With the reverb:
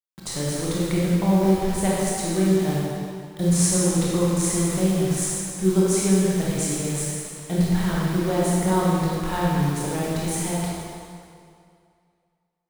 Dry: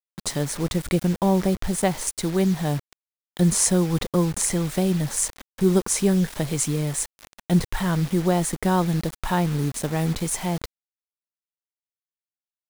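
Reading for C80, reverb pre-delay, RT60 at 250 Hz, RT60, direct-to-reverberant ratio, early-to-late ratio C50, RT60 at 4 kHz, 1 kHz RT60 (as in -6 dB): -1.0 dB, 21 ms, 2.2 s, 2.4 s, -6.0 dB, -3.5 dB, 2.0 s, 2.4 s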